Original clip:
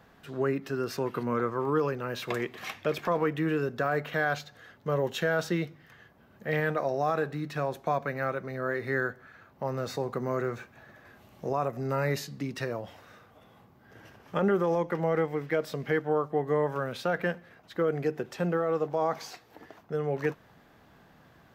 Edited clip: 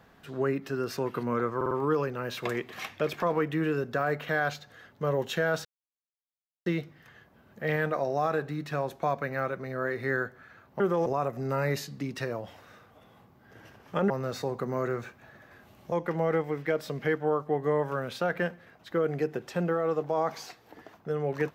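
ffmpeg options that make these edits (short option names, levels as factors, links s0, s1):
-filter_complex "[0:a]asplit=9[s0][s1][s2][s3][s4][s5][s6][s7][s8];[s0]atrim=end=1.612[s9];[s1]atrim=start=1.558:end=1.612[s10];[s2]atrim=start=1.558:end=1.612[s11];[s3]atrim=start=1.558:end=5.5,asetpts=PTS-STARTPTS,afade=t=out:st=3.938:d=0.004:c=hsin,apad=pad_dur=1.01[s12];[s4]atrim=start=5.5:end=9.642,asetpts=PTS-STARTPTS,afade=t=in:d=0.004:c=hsin[s13];[s5]atrim=start=14.498:end=14.762[s14];[s6]atrim=start=11.458:end=14.502[s15];[s7]atrim=start=9.638:end=11.462[s16];[s8]atrim=start=14.758[s17];[s9][s10]acrossfade=d=0.004:c1=hsin:c2=hsin[s18];[s18][s11]acrossfade=d=0.004:c1=hsin:c2=hsin[s19];[s12][s13]concat=n=2:v=0:a=1[s20];[s19][s20]acrossfade=d=0.004:c1=hsin:c2=hsin[s21];[s21][s14]acrossfade=d=0.004:c1=hsin:c2=hsin[s22];[s22][s15]acrossfade=d=0.004:c1=hsin:c2=hsin[s23];[s23][s16]acrossfade=d=0.004:c1=hsin:c2=hsin[s24];[s24][s17]acrossfade=d=0.004:c1=hsin:c2=hsin"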